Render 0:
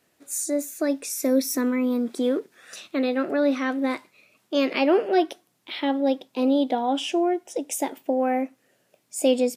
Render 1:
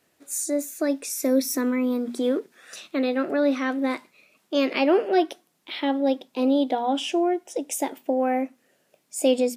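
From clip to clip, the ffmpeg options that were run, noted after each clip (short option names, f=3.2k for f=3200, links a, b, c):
-af "bandreject=f=60:t=h:w=6,bandreject=f=120:t=h:w=6,bandreject=f=180:t=h:w=6,bandreject=f=240:t=h:w=6"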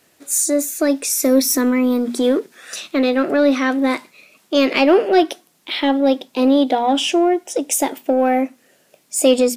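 -filter_complex "[0:a]highshelf=f=8.1k:g=-11.5,crystalizer=i=2:c=0,asplit=2[a][b];[b]asoftclip=type=tanh:threshold=-25dB,volume=-7.5dB[c];[a][c]amix=inputs=2:normalize=0,volume=5.5dB"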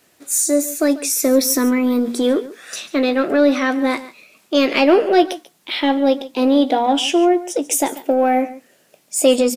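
-filter_complex "[0:a]asplit=2[a][b];[b]adelay=17,volume=-12.5dB[c];[a][c]amix=inputs=2:normalize=0,aecho=1:1:141:0.141,acrusher=bits=11:mix=0:aa=0.000001"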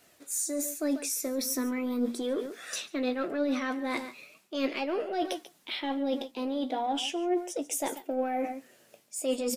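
-af "areverse,acompressor=threshold=-25dB:ratio=5,areverse,flanger=delay=1.4:depth=7.4:regen=62:speed=0.39:shape=sinusoidal"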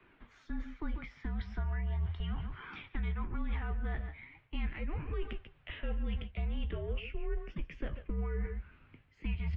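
-filter_complex "[0:a]asubboost=boost=9.5:cutoff=190,highpass=f=210:t=q:w=0.5412,highpass=f=210:t=q:w=1.307,lowpass=f=3.1k:t=q:w=0.5176,lowpass=f=3.1k:t=q:w=0.7071,lowpass=f=3.1k:t=q:w=1.932,afreqshift=-320,acrossover=split=100|440[a][b][c];[a]acompressor=threshold=-36dB:ratio=4[d];[b]acompressor=threshold=-45dB:ratio=4[e];[c]acompressor=threshold=-47dB:ratio=4[f];[d][e][f]amix=inputs=3:normalize=0,volume=1dB"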